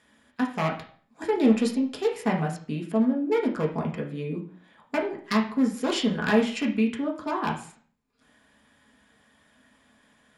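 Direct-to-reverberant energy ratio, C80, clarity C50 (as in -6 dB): -1.0 dB, 13.0 dB, 8.5 dB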